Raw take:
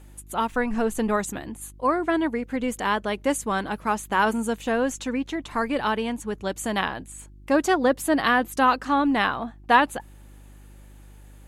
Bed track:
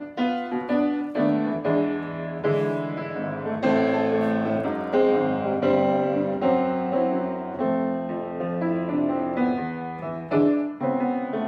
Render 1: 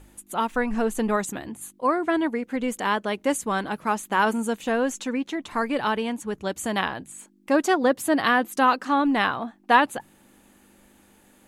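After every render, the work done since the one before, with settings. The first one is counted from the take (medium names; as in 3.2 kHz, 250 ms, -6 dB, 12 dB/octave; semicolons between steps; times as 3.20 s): de-hum 50 Hz, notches 3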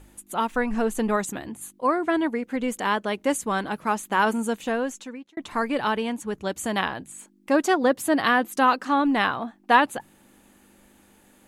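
4.59–5.37 s: fade out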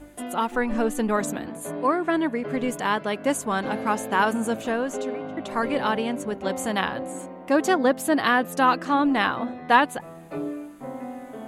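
add bed track -11 dB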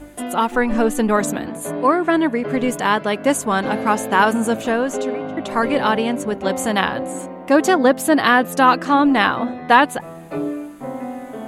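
trim +6.5 dB; peak limiter -2 dBFS, peak gain reduction 2 dB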